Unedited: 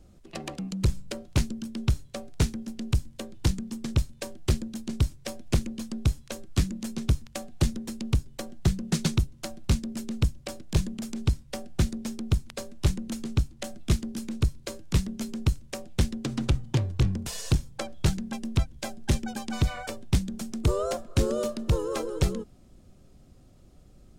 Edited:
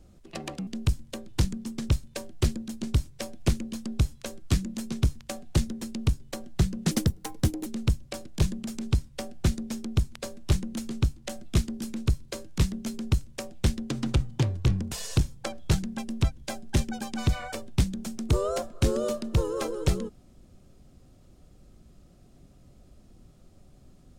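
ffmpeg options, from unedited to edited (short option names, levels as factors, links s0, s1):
-filter_complex "[0:a]asplit=4[s0][s1][s2][s3];[s0]atrim=end=0.672[s4];[s1]atrim=start=2.728:end=8.974[s5];[s2]atrim=start=8.97:end=10.01,asetpts=PTS-STARTPTS,asetrate=60858,aresample=44100[s6];[s3]atrim=start=10.006[s7];[s4][s5]acrossfade=d=0.004:c1=hsin:c2=hsin[s8];[s8][s6]acrossfade=d=0.004:c1=hsin:c2=hsin[s9];[s9][s7]acrossfade=d=0.004:c1=hsin:c2=hsin"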